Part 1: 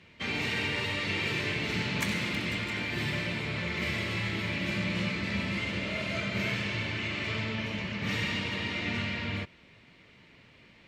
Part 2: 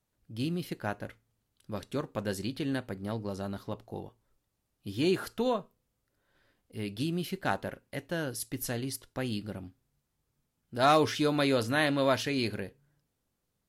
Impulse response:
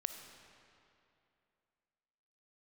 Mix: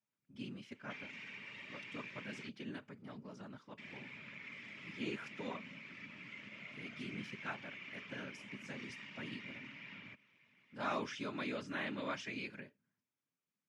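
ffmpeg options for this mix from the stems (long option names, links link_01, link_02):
-filter_complex "[0:a]acompressor=threshold=-35dB:ratio=6,adelay=700,volume=-7dB,asplit=3[link_01][link_02][link_03];[link_01]atrim=end=2.49,asetpts=PTS-STARTPTS,afade=type=out:start_time=2.486:duration=0.004:curve=hsin[link_04];[link_02]atrim=start=2.49:end=3.78,asetpts=PTS-STARTPTS,volume=0[link_05];[link_03]atrim=start=3.78,asetpts=PTS-STARTPTS,afade=type=in:duration=0.004:curve=hsin[link_06];[link_04][link_05][link_06]concat=n=3:v=0:a=1[link_07];[1:a]deesser=0.75,volume=-4dB[link_08];[link_07][link_08]amix=inputs=2:normalize=0,afftfilt=real='hypot(re,im)*cos(2*PI*random(0))':imag='hypot(re,im)*sin(2*PI*random(1))':win_size=512:overlap=0.75,highpass=frequency=140:width=0.5412,highpass=frequency=140:width=1.3066,equalizer=frequency=160:width_type=q:width=4:gain=-5,equalizer=frequency=340:width_type=q:width=4:gain=-7,equalizer=frequency=480:width_type=q:width=4:gain=-8,equalizer=frequency=730:width_type=q:width=4:gain=-9,equalizer=frequency=2300:width_type=q:width=4:gain=5,equalizer=frequency=4200:width_type=q:width=4:gain=-10,lowpass=frequency=6700:width=0.5412,lowpass=frequency=6700:width=1.3066"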